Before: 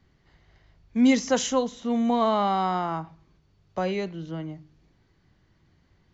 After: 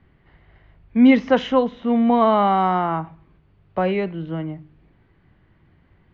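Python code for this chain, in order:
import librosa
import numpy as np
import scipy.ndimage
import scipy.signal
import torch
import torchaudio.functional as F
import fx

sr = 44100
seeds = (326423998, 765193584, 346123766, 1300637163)

y = scipy.signal.sosfilt(scipy.signal.butter(4, 2900.0, 'lowpass', fs=sr, output='sos'), x)
y = y * librosa.db_to_amplitude(6.5)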